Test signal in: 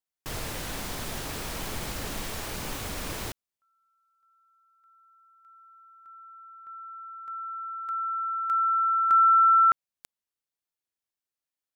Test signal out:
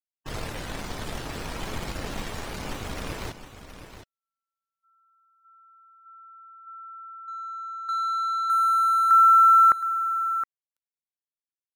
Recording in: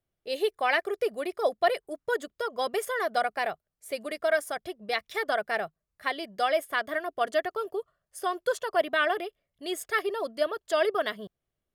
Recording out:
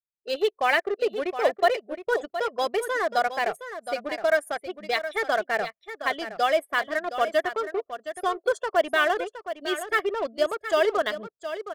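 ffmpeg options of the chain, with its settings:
ffmpeg -i in.wav -filter_complex "[0:a]afftdn=noise_reduction=27:noise_floor=-42,asplit=2[link_01][link_02];[link_02]acrusher=bits=4:mix=0:aa=0.5,volume=-7dB[link_03];[link_01][link_03]amix=inputs=2:normalize=0,aecho=1:1:717:0.282" out.wav

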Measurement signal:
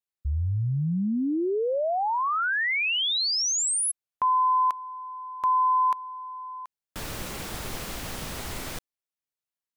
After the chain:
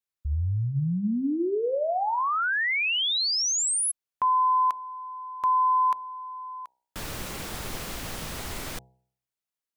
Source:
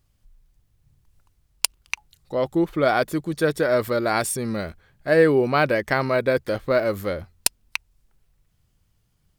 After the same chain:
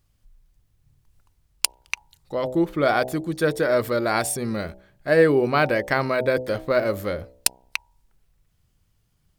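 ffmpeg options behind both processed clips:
ffmpeg -i in.wav -af "bandreject=frequency=63.7:width_type=h:width=4,bandreject=frequency=127.4:width_type=h:width=4,bandreject=frequency=191.1:width_type=h:width=4,bandreject=frequency=254.8:width_type=h:width=4,bandreject=frequency=318.5:width_type=h:width=4,bandreject=frequency=382.2:width_type=h:width=4,bandreject=frequency=445.9:width_type=h:width=4,bandreject=frequency=509.6:width_type=h:width=4,bandreject=frequency=573.3:width_type=h:width=4,bandreject=frequency=637:width_type=h:width=4,bandreject=frequency=700.7:width_type=h:width=4,bandreject=frequency=764.4:width_type=h:width=4,bandreject=frequency=828.1:width_type=h:width=4,bandreject=frequency=891.8:width_type=h:width=4,bandreject=frequency=955.5:width_type=h:width=4" out.wav

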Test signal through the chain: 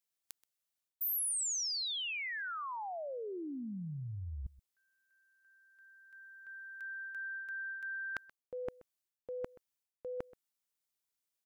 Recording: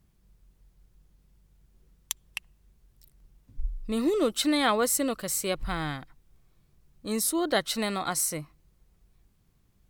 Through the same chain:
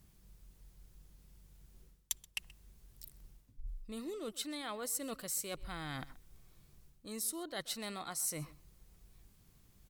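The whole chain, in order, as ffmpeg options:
ffmpeg -i in.wav -filter_complex "[0:a]areverse,acompressor=threshold=-41dB:ratio=12,areverse,highshelf=frequency=3500:gain=7,asplit=2[link_01][link_02];[link_02]adelay=128.3,volume=-20dB,highshelf=frequency=4000:gain=-2.89[link_03];[link_01][link_03]amix=inputs=2:normalize=0,volume=1dB" out.wav

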